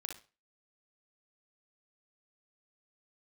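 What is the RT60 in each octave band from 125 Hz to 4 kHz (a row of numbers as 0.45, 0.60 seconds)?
0.35, 0.30, 0.35, 0.35, 0.30, 0.30 seconds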